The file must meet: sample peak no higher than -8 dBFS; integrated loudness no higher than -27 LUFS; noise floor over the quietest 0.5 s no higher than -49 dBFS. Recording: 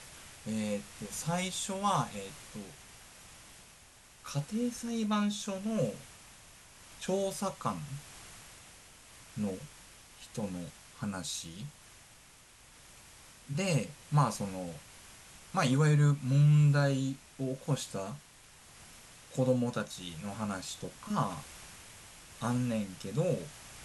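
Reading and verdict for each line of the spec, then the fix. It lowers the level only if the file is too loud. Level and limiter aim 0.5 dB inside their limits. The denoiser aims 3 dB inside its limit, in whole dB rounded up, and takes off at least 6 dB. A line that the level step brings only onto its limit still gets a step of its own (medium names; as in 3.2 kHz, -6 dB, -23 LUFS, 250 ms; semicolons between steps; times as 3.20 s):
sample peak -15.0 dBFS: pass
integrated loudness -33.0 LUFS: pass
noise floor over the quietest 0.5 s -58 dBFS: pass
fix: none needed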